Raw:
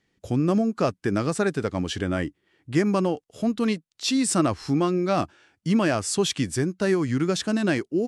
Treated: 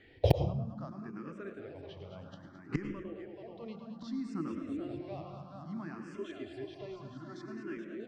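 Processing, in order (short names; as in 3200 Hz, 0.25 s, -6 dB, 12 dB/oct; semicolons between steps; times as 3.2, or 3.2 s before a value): 3.5–4.78 low shelf 420 Hz +8.5 dB; notches 60/120/180/240/300/360/420/480/540 Hz; multi-head echo 0.215 s, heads first and second, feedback 55%, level -8 dB; flipped gate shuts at -20 dBFS, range -35 dB; air absorption 220 m; reverb RT60 0.65 s, pre-delay 93 ms, DRR 7.5 dB; in parallel at -11 dB: wrapped overs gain 27 dB; 6.14–7.77 on the sum: comb 2.9 ms, depth 61%; endless phaser +0.62 Hz; gain +14 dB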